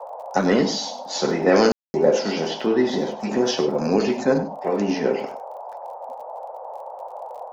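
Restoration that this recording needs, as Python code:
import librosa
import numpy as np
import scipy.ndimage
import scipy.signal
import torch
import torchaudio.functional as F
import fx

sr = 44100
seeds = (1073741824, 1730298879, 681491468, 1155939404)

y = fx.fix_declick_ar(x, sr, threshold=6.5)
y = fx.fix_ambience(y, sr, seeds[0], print_start_s=6.51, print_end_s=7.01, start_s=1.72, end_s=1.94)
y = fx.noise_reduce(y, sr, print_start_s=6.51, print_end_s=7.01, reduce_db=30.0)
y = fx.fix_echo_inverse(y, sr, delay_ms=97, level_db=-13.0)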